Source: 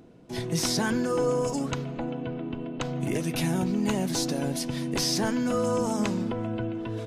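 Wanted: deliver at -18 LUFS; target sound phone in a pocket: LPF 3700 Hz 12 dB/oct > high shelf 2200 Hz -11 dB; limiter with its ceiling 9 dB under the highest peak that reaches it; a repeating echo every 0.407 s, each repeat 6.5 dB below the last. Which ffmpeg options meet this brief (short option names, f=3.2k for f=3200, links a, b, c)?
-af "alimiter=limit=-21.5dB:level=0:latency=1,lowpass=3.7k,highshelf=f=2.2k:g=-11,aecho=1:1:407|814|1221|1628|2035|2442:0.473|0.222|0.105|0.0491|0.0231|0.0109,volume=13dB"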